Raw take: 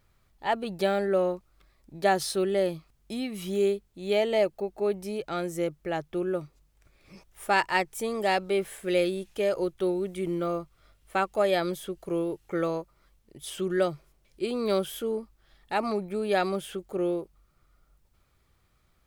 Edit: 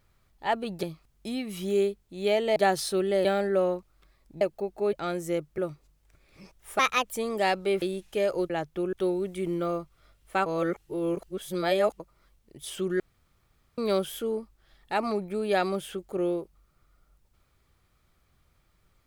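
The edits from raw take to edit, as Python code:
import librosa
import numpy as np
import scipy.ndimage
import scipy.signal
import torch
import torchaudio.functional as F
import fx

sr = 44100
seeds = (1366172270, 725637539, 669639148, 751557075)

y = fx.edit(x, sr, fx.swap(start_s=0.83, length_s=1.16, other_s=2.68, other_length_s=1.73),
    fx.cut(start_s=4.93, length_s=0.29),
    fx.move(start_s=5.87, length_s=0.43, to_s=9.73),
    fx.speed_span(start_s=7.51, length_s=0.46, speed=1.36),
    fx.cut(start_s=8.66, length_s=0.39),
    fx.reverse_span(start_s=11.26, length_s=1.54),
    fx.room_tone_fill(start_s=13.8, length_s=0.78), tone=tone)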